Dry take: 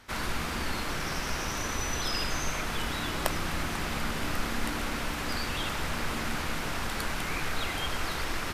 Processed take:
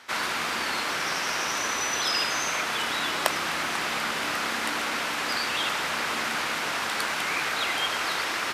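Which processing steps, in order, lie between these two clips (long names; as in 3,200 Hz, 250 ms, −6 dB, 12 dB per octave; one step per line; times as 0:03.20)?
meter weighting curve A
level +6 dB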